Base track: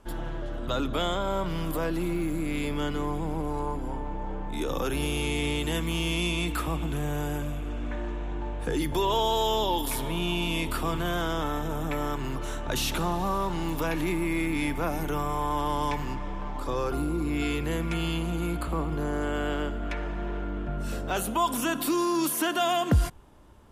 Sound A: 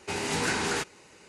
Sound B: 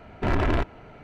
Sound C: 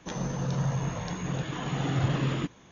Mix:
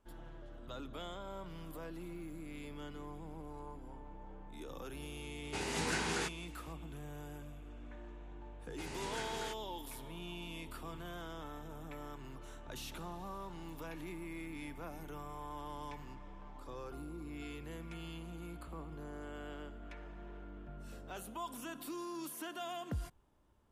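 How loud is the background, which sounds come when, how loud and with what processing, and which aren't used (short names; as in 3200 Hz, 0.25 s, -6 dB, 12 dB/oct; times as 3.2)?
base track -17.5 dB
5.45 add A -8 dB
8.7 add A -15.5 dB
not used: B, C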